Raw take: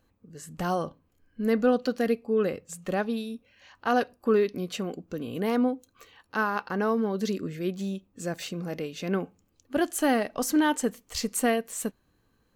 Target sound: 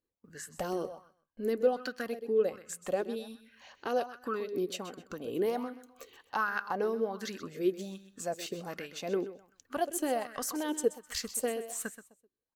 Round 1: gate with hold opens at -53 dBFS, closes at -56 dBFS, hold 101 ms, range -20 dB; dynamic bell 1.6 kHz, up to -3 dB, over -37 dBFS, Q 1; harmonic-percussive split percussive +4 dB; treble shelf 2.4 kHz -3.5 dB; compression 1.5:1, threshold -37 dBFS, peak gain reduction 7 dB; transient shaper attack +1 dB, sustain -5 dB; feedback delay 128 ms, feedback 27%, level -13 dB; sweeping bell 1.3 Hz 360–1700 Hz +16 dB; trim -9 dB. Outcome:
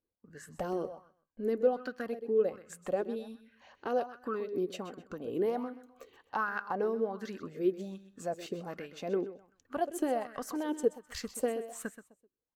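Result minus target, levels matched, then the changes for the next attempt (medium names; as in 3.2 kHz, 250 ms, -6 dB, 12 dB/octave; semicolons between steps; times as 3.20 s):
4 kHz band -6.5 dB
change: treble shelf 2.4 kHz +8 dB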